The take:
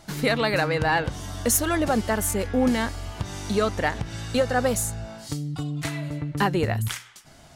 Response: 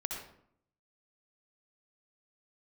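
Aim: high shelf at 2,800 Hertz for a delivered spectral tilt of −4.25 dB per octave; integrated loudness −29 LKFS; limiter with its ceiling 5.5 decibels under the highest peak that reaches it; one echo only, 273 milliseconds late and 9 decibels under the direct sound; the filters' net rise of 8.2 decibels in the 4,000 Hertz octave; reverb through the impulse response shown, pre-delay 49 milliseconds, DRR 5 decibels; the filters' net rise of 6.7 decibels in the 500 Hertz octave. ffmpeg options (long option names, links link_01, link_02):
-filter_complex "[0:a]equalizer=frequency=500:width_type=o:gain=7.5,highshelf=frequency=2800:gain=3,equalizer=frequency=4000:width_type=o:gain=7.5,alimiter=limit=-11dB:level=0:latency=1,aecho=1:1:273:0.355,asplit=2[link_01][link_02];[1:a]atrim=start_sample=2205,adelay=49[link_03];[link_02][link_03]afir=irnorm=-1:irlink=0,volume=-7dB[link_04];[link_01][link_04]amix=inputs=2:normalize=0,volume=-7.5dB"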